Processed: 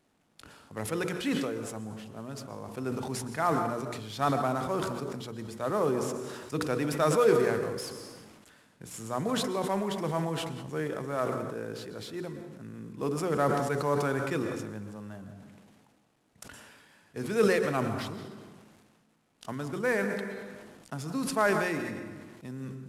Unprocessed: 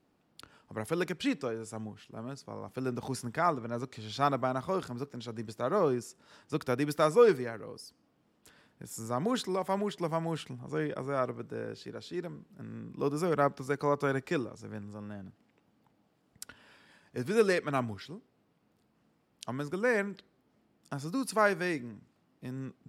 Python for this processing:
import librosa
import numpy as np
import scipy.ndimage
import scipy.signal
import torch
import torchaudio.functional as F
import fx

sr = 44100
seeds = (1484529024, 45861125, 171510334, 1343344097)

y = fx.cvsd(x, sr, bps=64000)
y = fx.peak_eq(y, sr, hz=4700.0, db=-2.0, octaves=0.77)
y = fx.hum_notches(y, sr, base_hz=60, count=8)
y = fx.rev_plate(y, sr, seeds[0], rt60_s=1.0, hf_ratio=0.8, predelay_ms=105, drr_db=10.5)
y = fx.sustainer(y, sr, db_per_s=32.0)